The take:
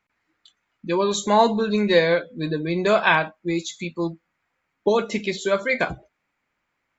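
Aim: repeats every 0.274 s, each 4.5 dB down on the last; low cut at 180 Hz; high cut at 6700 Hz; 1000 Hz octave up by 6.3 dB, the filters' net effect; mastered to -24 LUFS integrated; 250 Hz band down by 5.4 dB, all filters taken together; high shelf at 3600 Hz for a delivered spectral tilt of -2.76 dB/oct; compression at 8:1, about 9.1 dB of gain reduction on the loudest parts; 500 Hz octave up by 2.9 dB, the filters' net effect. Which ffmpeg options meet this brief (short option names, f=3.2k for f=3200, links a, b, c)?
-af "highpass=180,lowpass=6.7k,equalizer=f=250:t=o:g=-9,equalizer=f=500:t=o:g=4,equalizer=f=1k:t=o:g=7.5,highshelf=f=3.6k:g=-8.5,acompressor=threshold=-15dB:ratio=8,aecho=1:1:274|548|822|1096|1370|1644|1918|2192|2466:0.596|0.357|0.214|0.129|0.0772|0.0463|0.0278|0.0167|0.01,volume=-2dB"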